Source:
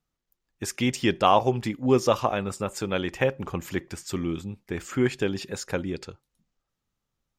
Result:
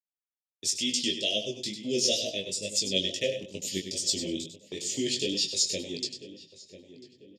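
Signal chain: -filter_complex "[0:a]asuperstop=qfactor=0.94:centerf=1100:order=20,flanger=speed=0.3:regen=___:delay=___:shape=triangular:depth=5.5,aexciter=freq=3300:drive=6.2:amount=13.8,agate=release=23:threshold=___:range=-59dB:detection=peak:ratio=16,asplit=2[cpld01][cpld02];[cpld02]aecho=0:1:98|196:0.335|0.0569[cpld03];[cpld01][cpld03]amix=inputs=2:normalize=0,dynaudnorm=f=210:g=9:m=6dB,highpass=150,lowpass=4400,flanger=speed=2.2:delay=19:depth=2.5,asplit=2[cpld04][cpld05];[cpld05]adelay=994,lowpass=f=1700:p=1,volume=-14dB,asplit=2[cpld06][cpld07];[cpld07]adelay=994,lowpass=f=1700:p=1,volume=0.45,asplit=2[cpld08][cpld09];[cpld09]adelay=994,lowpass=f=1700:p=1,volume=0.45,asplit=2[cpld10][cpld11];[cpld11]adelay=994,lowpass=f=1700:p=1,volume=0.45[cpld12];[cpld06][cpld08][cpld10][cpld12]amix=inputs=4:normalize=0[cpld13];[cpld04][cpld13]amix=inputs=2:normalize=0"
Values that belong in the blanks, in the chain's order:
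38, 9.2, -37dB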